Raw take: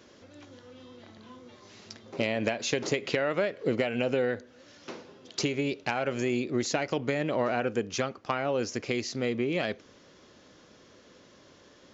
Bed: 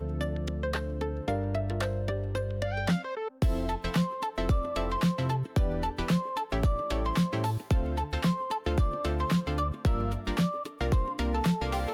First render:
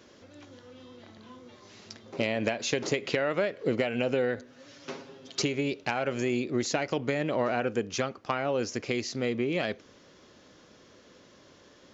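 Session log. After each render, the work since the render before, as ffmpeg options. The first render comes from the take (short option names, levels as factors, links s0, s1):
-filter_complex "[0:a]asettb=1/sr,asplit=3[s0][s1][s2];[s0]atrim=end=4.374[s3];[s1]atrim=start=4.37:end=5.42,asetpts=PTS-STARTPTS,afade=t=in:d=0.004:c=qsin,afade=t=out:st=1.046:d=0.004:c=qsin,aecho=1:1:7.3:0.84,atrim=end_sample=46305[s4];[s2]atrim=start=5.416[s5];[s3][s4]acrossfade=d=0.004:c1=hsin:c2=qsin[s6];[s6][s5]acrossfade=d=0.004:c1=qsin:c2=hsin"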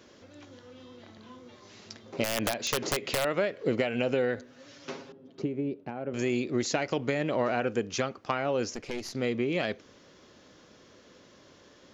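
-filter_complex "[0:a]asettb=1/sr,asplit=3[s0][s1][s2];[s0]atrim=end=2.244[s3];[s1]atrim=start=2.24:end=3.25,asetpts=PTS-STARTPTS,afade=t=in:d=0.004:c=qsin,afade=t=out:st=1.006:d=0.004:c=qsin,aeval=exprs='(mod(10*val(0)+1,2)-1)/10':c=same[s4];[s2]atrim=start=3.246[s5];[s3][s4]acrossfade=d=0.004:c1=hsin:c2=qsin[s6];[s6][s5]acrossfade=d=0.004:c1=qsin:c2=hsin,asettb=1/sr,asplit=3[s7][s8][s9];[s7]atrim=end=5.124[s10];[s8]atrim=start=5.12:end=6.14,asetpts=PTS-STARTPTS,afade=t=in:d=0.004:c=qsin,afade=t=out:st=1.016:d=0.004:c=qsin,bandpass=f=230:t=q:w=0.83[s11];[s9]atrim=start=6.136[s12];[s10][s11]acrossfade=d=0.004:c1=hsin:c2=qsin[s13];[s13][s12]acrossfade=d=0.004:c1=qsin:c2=hsin,asettb=1/sr,asplit=3[s14][s15][s16];[s14]atrim=end=8.744[s17];[s15]atrim=start=8.74:end=9.15,asetpts=PTS-STARTPTS,afade=t=in:d=0.004:c=qsin,afade=t=out:st=0.406:d=0.004:c=qsin,aeval=exprs='(tanh(22.4*val(0)+0.75)-tanh(0.75))/22.4':c=same[s18];[s16]atrim=start=9.146[s19];[s17][s18]acrossfade=d=0.004:c1=hsin:c2=qsin[s20];[s20][s19]acrossfade=d=0.004:c1=qsin:c2=hsin"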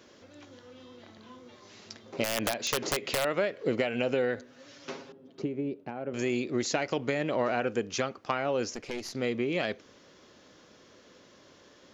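-af "lowshelf=f=190:g=-4"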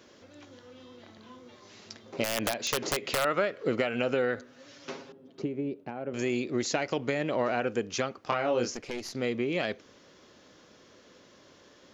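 -filter_complex "[0:a]asettb=1/sr,asplit=3[s0][s1][s2];[s0]atrim=end=3.144[s3];[s1]atrim=start=3.14:end=4.5,asetpts=PTS-STARTPTS,afade=t=in:d=0.004:c=qsin,afade=t=out:st=1.356:d=0.004:c=qsin,equalizer=f=1300:t=o:w=0.33:g=8.5[s4];[s2]atrim=start=4.496[s5];[s3][s4]acrossfade=d=0.004:c1=hsin:c2=qsin[s6];[s6][s5]acrossfade=d=0.004:c1=qsin:c2=hsin,asettb=1/sr,asplit=3[s7][s8][s9];[s7]atrim=end=8.234[s10];[s8]atrim=start=8.23:end=8.77,asetpts=PTS-STARTPTS,afade=t=in:d=0.004:c=qsin,afade=t=out:st=0.536:d=0.004:c=qsin,asplit=2[s11][s12];[s12]adelay=25,volume=0.631[s13];[s11][s13]amix=inputs=2:normalize=0,atrim=end_sample=23814[s14];[s9]atrim=start=8.766[s15];[s10][s14]acrossfade=d=0.004:c1=hsin:c2=qsin[s16];[s16][s15]acrossfade=d=0.004:c1=qsin:c2=hsin"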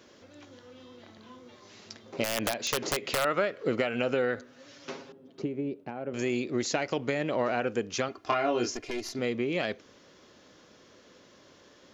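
-filter_complex "[0:a]asettb=1/sr,asplit=3[s0][s1][s2];[s0]atrim=end=8.084[s3];[s1]atrim=start=8.08:end=9.19,asetpts=PTS-STARTPTS,afade=t=in:d=0.004:c=qsin,afade=t=out:st=1.106:d=0.004:c=qsin,aecho=1:1:2.9:0.65,atrim=end_sample=48951[s4];[s2]atrim=start=9.186[s5];[s3][s4]acrossfade=d=0.004:c1=hsin:c2=qsin[s6];[s6][s5]acrossfade=d=0.004:c1=qsin:c2=hsin"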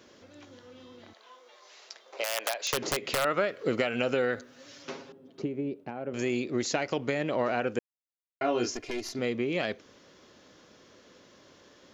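-filter_complex "[0:a]asettb=1/sr,asplit=3[s0][s1][s2];[s0]atrim=end=1.134[s3];[s1]atrim=start=1.13:end=2.73,asetpts=PTS-STARTPTS,afade=t=in:d=0.004:c=qsin,afade=t=out:st=1.596:d=0.004:c=qsin,highpass=f=510:w=0.5412,highpass=f=510:w=1.3066[s4];[s2]atrim=start=2.726[s5];[s3][s4]acrossfade=d=0.004:c1=hsin:c2=qsin[s6];[s6][s5]acrossfade=d=0.004:c1=qsin:c2=hsin,asettb=1/sr,asplit=3[s7][s8][s9];[s7]atrim=end=3.484[s10];[s8]atrim=start=3.48:end=4.83,asetpts=PTS-STARTPTS,afade=t=in:d=0.004:c=qsin,afade=t=out:st=1.346:d=0.004:c=qsin,highshelf=f=4000:g=6[s11];[s9]atrim=start=4.826[s12];[s10][s11]acrossfade=d=0.004:c1=hsin:c2=qsin[s13];[s13][s12]acrossfade=d=0.004:c1=qsin:c2=hsin,asplit=3[s14][s15][s16];[s14]atrim=end=7.79,asetpts=PTS-STARTPTS,afade=t=out:st=7.786:d=0.004:c=hsin[s17];[s15]atrim=start=7.79:end=8.41,asetpts=PTS-STARTPTS,volume=0[s18];[s16]atrim=start=8.41,asetpts=PTS-STARTPTS,afade=t=in:d=0.004:c=hsin[s19];[s17][s18][s19]concat=n=3:v=0:a=1"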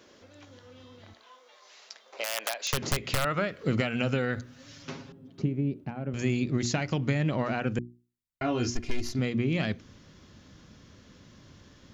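-af "asubboost=boost=9.5:cutoff=150,bandreject=f=60:t=h:w=6,bandreject=f=120:t=h:w=6,bandreject=f=180:t=h:w=6,bandreject=f=240:t=h:w=6,bandreject=f=300:t=h:w=6,bandreject=f=360:t=h:w=6"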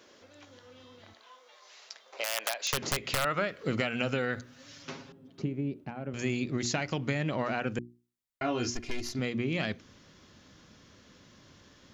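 -af "lowshelf=f=240:g=-8"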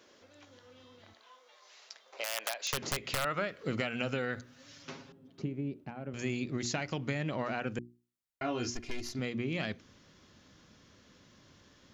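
-af "volume=0.668"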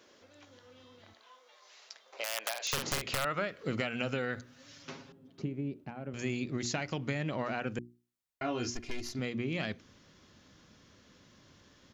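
-filter_complex "[0:a]asplit=3[s0][s1][s2];[s0]afade=t=out:st=2.54:d=0.02[s3];[s1]asplit=2[s4][s5];[s5]adelay=49,volume=0.631[s6];[s4][s6]amix=inputs=2:normalize=0,afade=t=in:st=2.54:d=0.02,afade=t=out:st=3.13:d=0.02[s7];[s2]afade=t=in:st=3.13:d=0.02[s8];[s3][s7][s8]amix=inputs=3:normalize=0"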